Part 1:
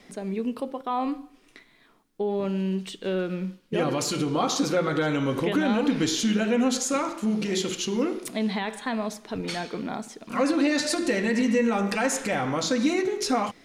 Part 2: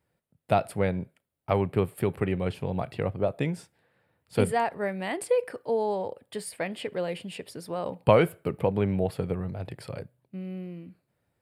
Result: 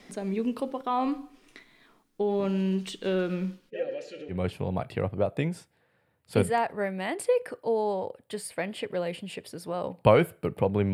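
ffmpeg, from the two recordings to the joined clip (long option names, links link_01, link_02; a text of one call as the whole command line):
ffmpeg -i cue0.wav -i cue1.wav -filter_complex "[0:a]asplit=3[link_01][link_02][link_03];[link_01]afade=type=out:start_time=3.69:duration=0.02[link_04];[link_02]asplit=3[link_05][link_06][link_07];[link_05]bandpass=frequency=530:width_type=q:width=8,volume=0dB[link_08];[link_06]bandpass=frequency=1840:width_type=q:width=8,volume=-6dB[link_09];[link_07]bandpass=frequency=2480:width_type=q:width=8,volume=-9dB[link_10];[link_08][link_09][link_10]amix=inputs=3:normalize=0,afade=type=in:start_time=3.69:duration=0.02,afade=type=out:start_time=4.36:duration=0.02[link_11];[link_03]afade=type=in:start_time=4.36:duration=0.02[link_12];[link_04][link_11][link_12]amix=inputs=3:normalize=0,apad=whole_dur=10.93,atrim=end=10.93,atrim=end=4.36,asetpts=PTS-STARTPTS[link_13];[1:a]atrim=start=2.3:end=8.95,asetpts=PTS-STARTPTS[link_14];[link_13][link_14]acrossfade=duration=0.08:curve1=tri:curve2=tri" out.wav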